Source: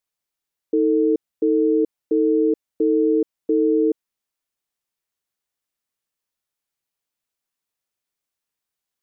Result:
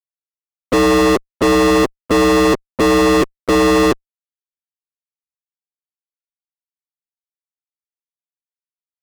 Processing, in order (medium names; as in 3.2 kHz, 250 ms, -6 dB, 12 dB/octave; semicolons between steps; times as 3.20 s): coarse spectral quantiser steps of 30 dB; fuzz box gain 43 dB, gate -46 dBFS; trim +2 dB